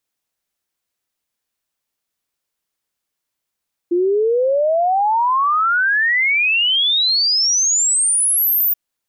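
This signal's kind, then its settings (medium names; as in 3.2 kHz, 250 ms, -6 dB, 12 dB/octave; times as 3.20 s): log sweep 340 Hz -> 15 kHz 4.83 s -13 dBFS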